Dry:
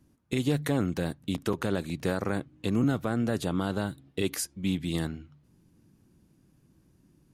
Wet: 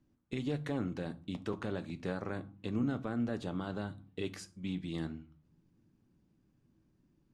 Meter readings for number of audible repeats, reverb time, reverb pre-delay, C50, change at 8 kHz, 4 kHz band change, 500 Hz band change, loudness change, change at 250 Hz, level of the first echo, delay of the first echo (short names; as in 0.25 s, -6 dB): none, 0.40 s, 3 ms, 19.0 dB, -17.5 dB, -10.5 dB, -8.5 dB, -8.0 dB, -7.5 dB, none, none